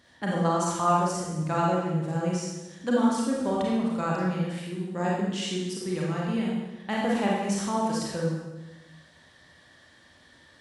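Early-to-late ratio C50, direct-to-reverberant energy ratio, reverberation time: −1.0 dB, −4.0 dB, 1.1 s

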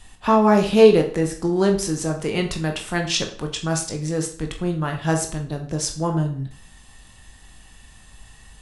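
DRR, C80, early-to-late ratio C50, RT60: 3.5 dB, 13.5 dB, 10.0 dB, 0.45 s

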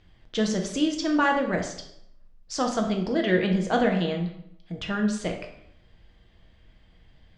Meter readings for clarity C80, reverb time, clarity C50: 10.0 dB, 0.75 s, 7.0 dB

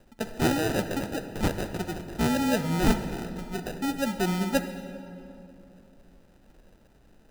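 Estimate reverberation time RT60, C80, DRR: 2.7 s, 10.5 dB, 8.5 dB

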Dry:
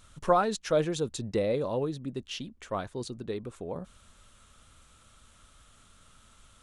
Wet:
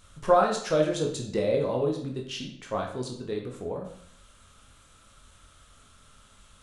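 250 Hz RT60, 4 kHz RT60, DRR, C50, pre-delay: 0.65 s, 0.55 s, 0.5 dB, 6.5 dB, 16 ms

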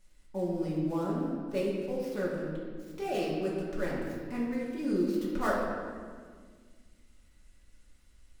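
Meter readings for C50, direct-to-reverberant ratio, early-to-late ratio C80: −0.5 dB, −7.0 dB, 2.0 dB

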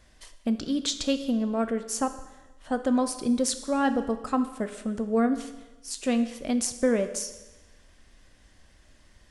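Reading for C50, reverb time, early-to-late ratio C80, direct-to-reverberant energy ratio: 11.5 dB, 1.1 s, 13.0 dB, 9.0 dB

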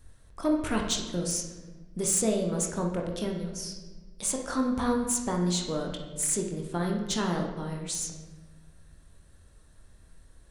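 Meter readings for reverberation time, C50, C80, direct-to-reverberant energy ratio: 1.3 s, 4.5 dB, 7.5 dB, 1.0 dB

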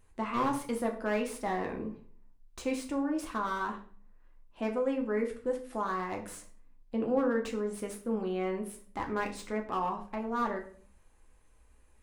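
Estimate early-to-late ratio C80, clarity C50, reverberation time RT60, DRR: 15.0 dB, 10.5 dB, 0.50 s, 1.5 dB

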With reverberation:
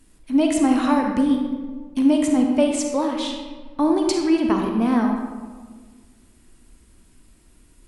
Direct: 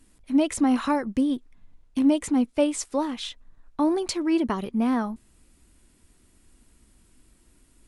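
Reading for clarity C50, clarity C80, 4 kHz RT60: 3.0 dB, 5.0 dB, 0.85 s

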